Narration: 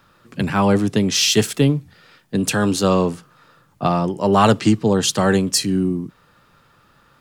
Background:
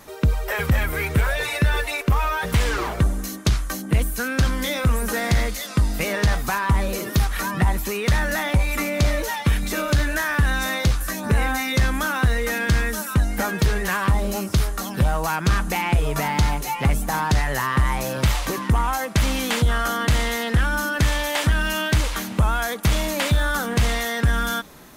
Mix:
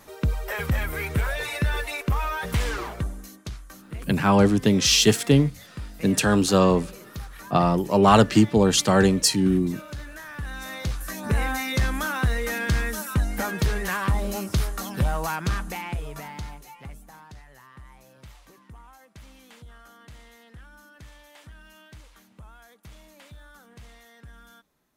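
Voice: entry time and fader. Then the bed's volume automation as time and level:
3.70 s, -1.5 dB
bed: 2.7 s -5 dB
3.54 s -17 dB
10.23 s -17 dB
11.32 s -4 dB
15.26 s -4 dB
17.45 s -27.5 dB

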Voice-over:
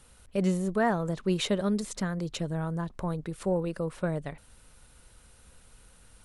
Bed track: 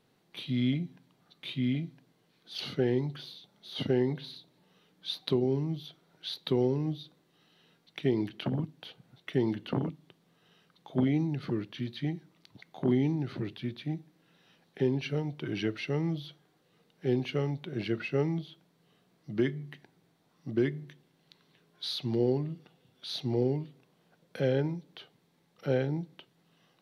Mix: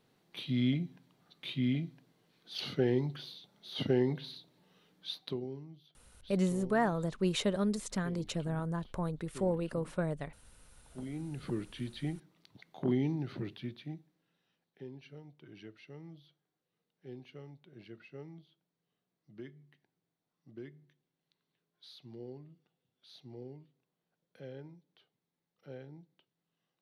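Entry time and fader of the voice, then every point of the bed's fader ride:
5.95 s, -3.5 dB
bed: 4.96 s -1.5 dB
5.74 s -19 dB
10.92 s -19 dB
11.49 s -4 dB
13.55 s -4 dB
14.71 s -19 dB

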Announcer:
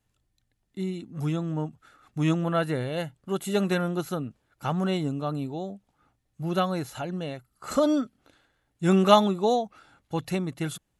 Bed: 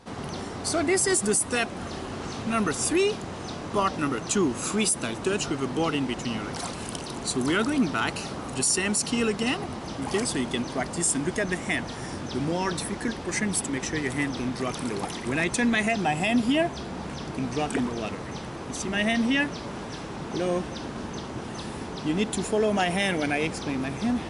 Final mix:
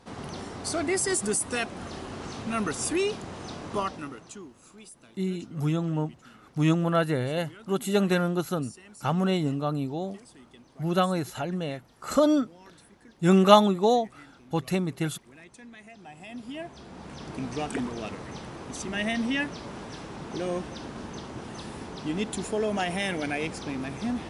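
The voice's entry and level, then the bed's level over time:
4.40 s, +1.5 dB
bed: 3.76 s -3.5 dB
4.57 s -24.5 dB
15.85 s -24.5 dB
17.34 s -4 dB

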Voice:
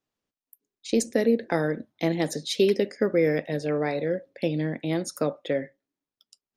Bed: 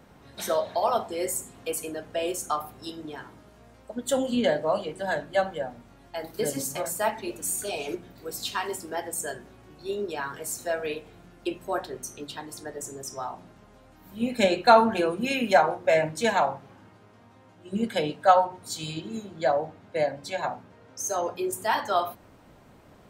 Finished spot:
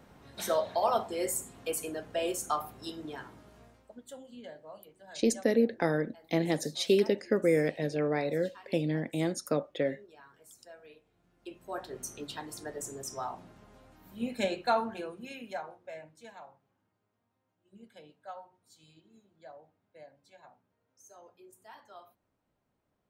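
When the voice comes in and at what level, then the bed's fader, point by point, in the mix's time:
4.30 s, -3.5 dB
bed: 3.63 s -3 dB
4.17 s -23 dB
11.1 s -23 dB
12.04 s -3 dB
13.83 s -3 dB
16.3 s -26.5 dB

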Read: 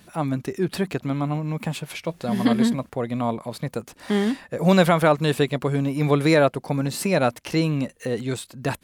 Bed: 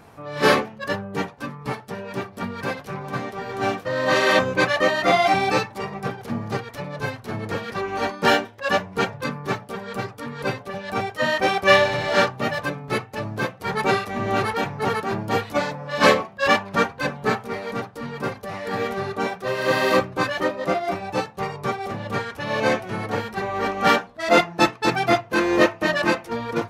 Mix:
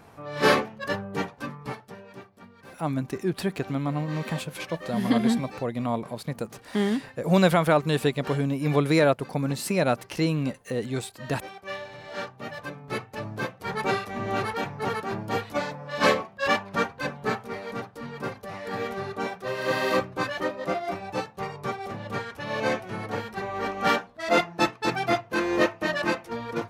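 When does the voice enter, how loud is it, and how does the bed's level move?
2.65 s, -3.0 dB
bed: 1.51 s -3 dB
2.5 s -21 dB
11.78 s -21 dB
13.06 s -5.5 dB

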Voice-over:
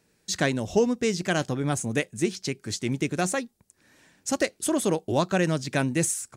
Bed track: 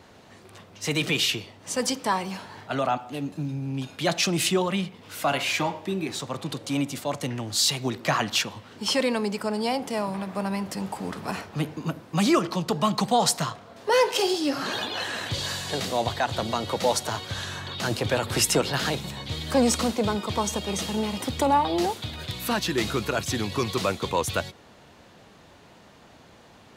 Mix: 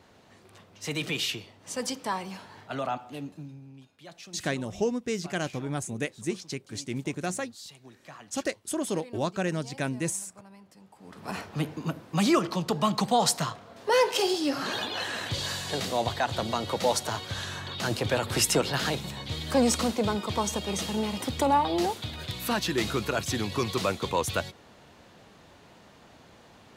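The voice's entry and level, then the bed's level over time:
4.05 s, -5.5 dB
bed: 3.2 s -6 dB
3.92 s -23 dB
10.92 s -23 dB
11.36 s -2 dB

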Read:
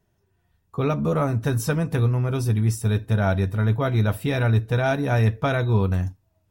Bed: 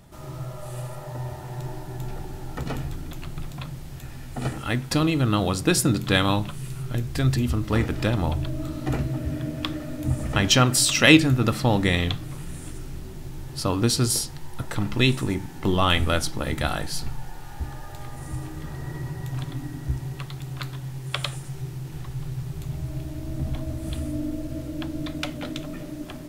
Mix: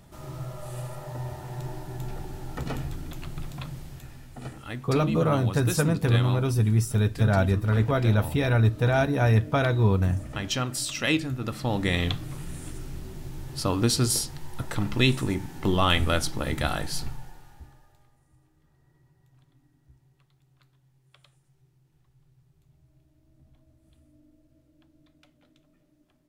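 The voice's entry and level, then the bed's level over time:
4.10 s, -1.0 dB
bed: 3.8 s -2 dB
4.41 s -10.5 dB
11.4 s -10.5 dB
12.06 s -1.5 dB
17.01 s -1.5 dB
18.27 s -30.5 dB

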